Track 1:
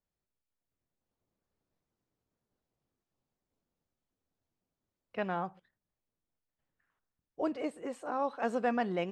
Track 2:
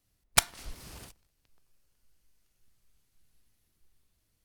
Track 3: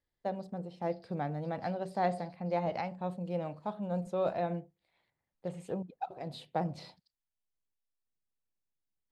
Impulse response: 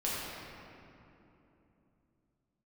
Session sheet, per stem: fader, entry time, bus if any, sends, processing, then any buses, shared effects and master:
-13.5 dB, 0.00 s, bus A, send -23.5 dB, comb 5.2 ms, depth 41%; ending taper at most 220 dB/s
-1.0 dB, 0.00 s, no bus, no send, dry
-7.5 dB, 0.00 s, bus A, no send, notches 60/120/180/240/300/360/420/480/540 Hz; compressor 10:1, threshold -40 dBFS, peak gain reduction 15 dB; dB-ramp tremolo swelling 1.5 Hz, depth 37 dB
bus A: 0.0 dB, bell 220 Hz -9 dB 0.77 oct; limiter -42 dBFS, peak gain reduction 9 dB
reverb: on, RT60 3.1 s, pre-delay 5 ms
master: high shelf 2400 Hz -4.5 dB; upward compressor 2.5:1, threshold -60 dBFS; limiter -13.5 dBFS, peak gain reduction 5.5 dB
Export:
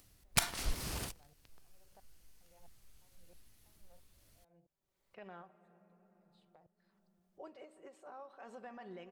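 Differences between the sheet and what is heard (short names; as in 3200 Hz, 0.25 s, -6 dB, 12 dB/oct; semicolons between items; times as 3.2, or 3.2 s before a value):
stem 2 -1.0 dB -> +7.0 dB; stem 3 -7.5 dB -> -18.0 dB; master: missing high shelf 2400 Hz -4.5 dB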